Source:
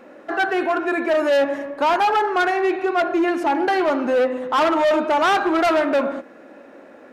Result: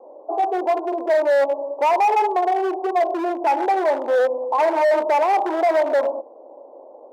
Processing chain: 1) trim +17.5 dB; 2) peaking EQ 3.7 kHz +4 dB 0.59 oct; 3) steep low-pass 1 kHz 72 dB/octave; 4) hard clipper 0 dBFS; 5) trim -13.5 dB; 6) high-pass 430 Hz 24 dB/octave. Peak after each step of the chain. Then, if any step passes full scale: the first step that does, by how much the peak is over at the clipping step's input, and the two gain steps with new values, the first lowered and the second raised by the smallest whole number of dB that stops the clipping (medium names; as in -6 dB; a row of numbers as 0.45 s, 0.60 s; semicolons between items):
+4.0 dBFS, +5.5 dBFS, +7.0 dBFS, 0.0 dBFS, -13.5 dBFS, -9.5 dBFS; step 1, 7.0 dB; step 1 +10.5 dB, step 5 -6.5 dB